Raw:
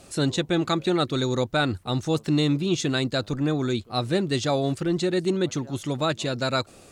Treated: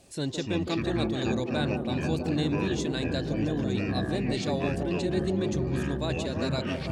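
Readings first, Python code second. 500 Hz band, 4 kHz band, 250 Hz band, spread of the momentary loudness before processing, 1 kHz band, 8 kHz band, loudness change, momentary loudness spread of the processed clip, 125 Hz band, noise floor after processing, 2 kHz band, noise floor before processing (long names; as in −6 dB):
−4.5 dB, −7.0 dB, −3.0 dB, 4 LU, −6.5 dB, −7.5 dB, −4.0 dB, 2 LU, −2.5 dB, −35 dBFS, −4.5 dB, −50 dBFS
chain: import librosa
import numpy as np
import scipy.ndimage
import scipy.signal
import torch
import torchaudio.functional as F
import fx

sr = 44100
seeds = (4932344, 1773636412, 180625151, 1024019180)

y = fx.peak_eq(x, sr, hz=1300.0, db=-14.0, octaves=0.21)
y = fx.echo_wet_bandpass(y, sr, ms=164, feedback_pct=81, hz=550.0, wet_db=-5)
y = fx.echo_pitch(y, sr, ms=206, semitones=-7, count=2, db_per_echo=-3.0)
y = y * 10.0 ** (-7.5 / 20.0)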